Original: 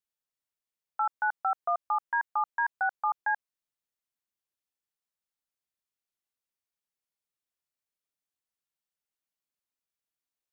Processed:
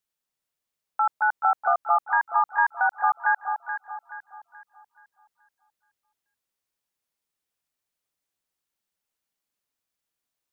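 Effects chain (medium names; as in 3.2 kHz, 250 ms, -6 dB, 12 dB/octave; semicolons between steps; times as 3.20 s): echo whose repeats swap between lows and highs 214 ms, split 1.1 kHz, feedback 62%, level -4 dB; trim +5.5 dB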